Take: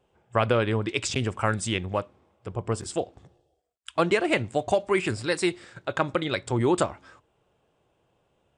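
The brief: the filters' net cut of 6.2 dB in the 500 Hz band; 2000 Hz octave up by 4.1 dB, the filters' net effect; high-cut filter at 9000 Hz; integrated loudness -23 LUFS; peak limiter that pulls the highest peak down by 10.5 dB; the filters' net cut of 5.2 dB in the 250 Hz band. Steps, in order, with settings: LPF 9000 Hz; bell 250 Hz -4.5 dB; bell 500 Hz -7 dB; bell 2000 Hz +5.5 dB; gain +8.5 dB; limiter -9.5 dBFS

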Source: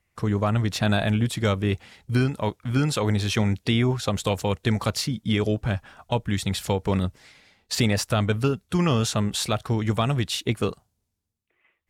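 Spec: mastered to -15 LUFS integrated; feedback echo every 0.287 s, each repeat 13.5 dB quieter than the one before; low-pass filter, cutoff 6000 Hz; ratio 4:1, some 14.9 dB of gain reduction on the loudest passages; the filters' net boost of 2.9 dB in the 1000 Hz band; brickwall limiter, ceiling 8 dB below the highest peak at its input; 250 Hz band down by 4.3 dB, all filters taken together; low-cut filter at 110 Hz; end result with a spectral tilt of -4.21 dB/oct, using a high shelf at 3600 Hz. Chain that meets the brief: HPF 110 Hz; LPF 6000 Hz; bell 250 Hz -5.5 dB; bell 1000 Hz +3.5 dB; high shelf 3600 Hz +6 dB; compressor 4:1, threshold -37 dBFS; limiter -27 dBFS; feedback echo 0.287 s, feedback 21%, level -13.5 dB; gain +25 dB

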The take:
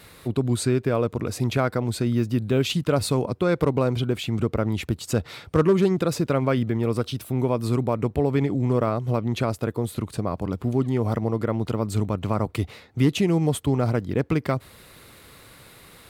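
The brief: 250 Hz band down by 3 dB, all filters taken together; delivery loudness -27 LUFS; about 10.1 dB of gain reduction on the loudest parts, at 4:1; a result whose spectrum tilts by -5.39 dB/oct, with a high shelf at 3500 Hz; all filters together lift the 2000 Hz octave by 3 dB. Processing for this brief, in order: bell 250 Hz -4 dB; bell 2000 Hz +3 dB; high shelf 3500 Hz +3.5 dB; compressor 4:1, threshold -28 dBFS; gain +5 dB

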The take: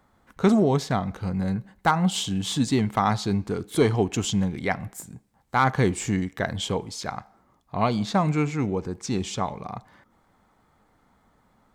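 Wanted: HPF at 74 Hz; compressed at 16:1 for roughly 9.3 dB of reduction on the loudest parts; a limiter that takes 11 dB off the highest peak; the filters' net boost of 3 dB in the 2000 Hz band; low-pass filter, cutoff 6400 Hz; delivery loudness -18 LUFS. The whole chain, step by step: HPF 74 Hz; LPF 6400 Hz; bell 2000 Hz +4 dB; compressor 16:1, threshold -23 dBFS; gain +14 dB; limiter -6.5 dBFS

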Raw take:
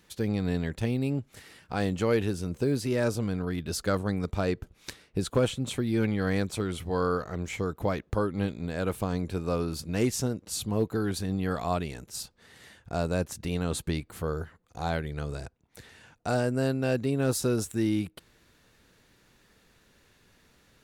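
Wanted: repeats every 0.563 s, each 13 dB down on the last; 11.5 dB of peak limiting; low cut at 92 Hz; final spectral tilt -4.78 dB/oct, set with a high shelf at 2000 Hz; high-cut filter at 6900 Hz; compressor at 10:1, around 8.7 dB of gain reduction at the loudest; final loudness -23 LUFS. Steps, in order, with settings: HPF 92 Hz; LPF 6900 Hz; high shelf 2000 Hz +4.5 dB; compressor 10:1, threshold -28 dBFS; limiter -26.5 dBFS; feedback echo 0.563 s, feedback 22%, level -13 dB; gain +14.5 dB

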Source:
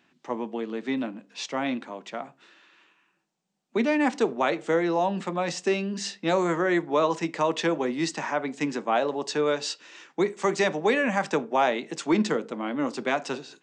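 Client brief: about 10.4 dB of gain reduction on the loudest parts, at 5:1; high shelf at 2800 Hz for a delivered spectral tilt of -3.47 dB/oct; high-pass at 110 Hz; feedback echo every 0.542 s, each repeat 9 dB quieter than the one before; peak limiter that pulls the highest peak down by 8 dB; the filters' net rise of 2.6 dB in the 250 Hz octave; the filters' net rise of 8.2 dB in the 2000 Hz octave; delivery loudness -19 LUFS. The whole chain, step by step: HPF 110 Hz; bell 250 Hz +3.5 dB; bell 2000 Hz +8 dB; high shelf 2800 Hz +5 dB; compressor 5:1, threshold -27 dBFS; limiter -22 dBFS; feedback echo 0.542 s, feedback 35%, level -9 dB; gain +13.5 dB

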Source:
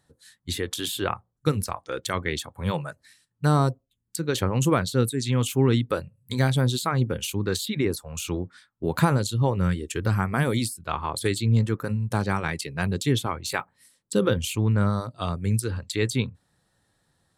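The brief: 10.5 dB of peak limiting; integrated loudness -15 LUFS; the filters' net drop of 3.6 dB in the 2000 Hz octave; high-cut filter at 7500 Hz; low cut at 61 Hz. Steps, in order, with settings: HPF 61 Hz; LPF 7500 Hz; bell 2000 Hz -5 dB; gain +15 dB; limiter -3 dBFS

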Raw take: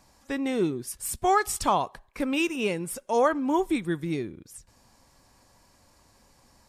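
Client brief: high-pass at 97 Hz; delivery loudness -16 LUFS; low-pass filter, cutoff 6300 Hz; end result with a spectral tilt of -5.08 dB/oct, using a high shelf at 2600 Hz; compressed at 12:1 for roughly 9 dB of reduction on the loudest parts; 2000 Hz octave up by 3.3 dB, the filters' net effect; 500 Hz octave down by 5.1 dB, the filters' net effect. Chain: HPF 97 Hz; LPF 6300 Hz; bell 500 Hz -7 dB; bell 2000 Hz +8 dB; high shelf 2600 Hz -6.5 dB; compressor 12:1, threshold -27 dBFS; gain +17.5 dB

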